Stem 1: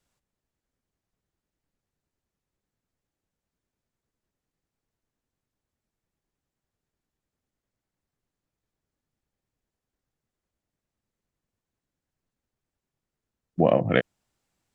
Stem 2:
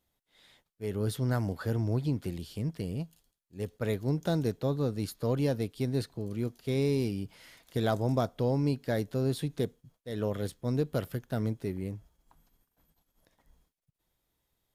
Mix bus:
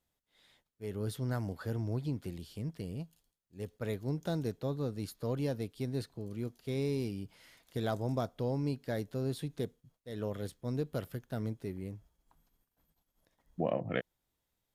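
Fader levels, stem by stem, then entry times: -12.5, -5.5 dB; 0.00, 0.00 s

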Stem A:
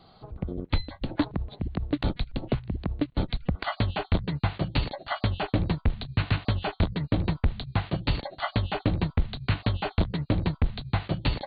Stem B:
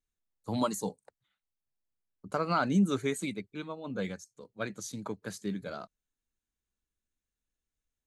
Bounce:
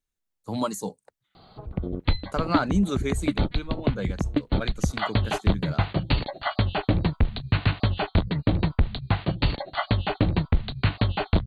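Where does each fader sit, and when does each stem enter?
+3.0, +2.5 dB; 1.35, 0.00 s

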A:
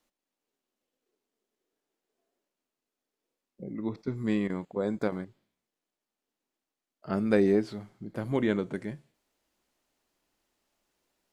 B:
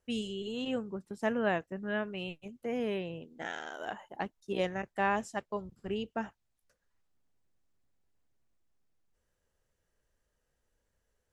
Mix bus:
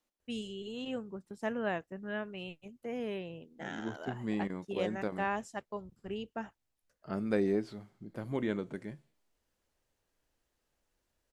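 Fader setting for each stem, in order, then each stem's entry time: -6.5, -4.0 dB; 0.00, 0.20 s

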